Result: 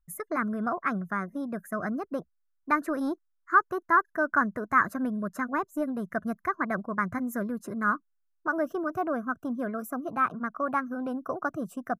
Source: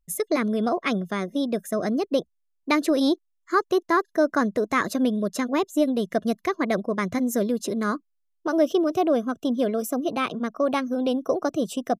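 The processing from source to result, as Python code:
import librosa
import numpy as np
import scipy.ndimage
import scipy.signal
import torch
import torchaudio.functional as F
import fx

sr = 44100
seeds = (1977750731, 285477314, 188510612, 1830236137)

y = fx.curve_eq(x, sr, hz=(130.0, 470.0, 1500.0, 3300.0, 12000.0), db=(0, -12, 7, -26, -7))
y = F.gain(torch.from_numpy(y), -1.0).numpy()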